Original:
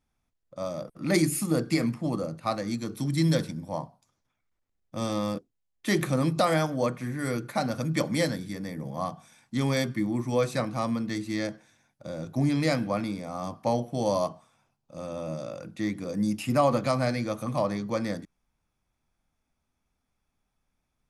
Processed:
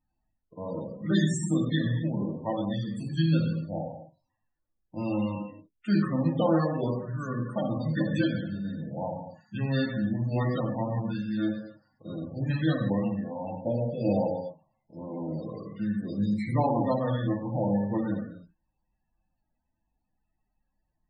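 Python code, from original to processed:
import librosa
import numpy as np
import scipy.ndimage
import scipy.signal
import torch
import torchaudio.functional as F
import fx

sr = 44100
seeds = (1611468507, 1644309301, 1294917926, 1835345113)

y = fx.formant_shift(x, sr, semitones=-4)
y = fx.rev_gated(y, sr, seeds[0], gate_ms=310, shape='falling', drr_db=-0.5)
y = fx.spec_topn(y, sr, count=32)
y = y * librosa.db_to_amplitude(-3.5)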